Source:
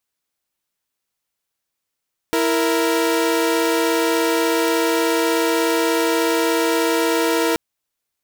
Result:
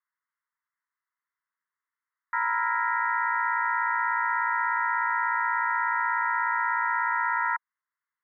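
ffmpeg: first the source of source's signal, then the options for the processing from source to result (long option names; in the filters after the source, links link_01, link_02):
-f lavfi -i "aevalsrc='0.15*((2*mod(329.63*t,1)-1)+(2*mod(466.16*t,1)-1))':duration=5.23:sample_rate=44100"
-af "asuperpass=centerf=1400:order=20:qfactor=1.2"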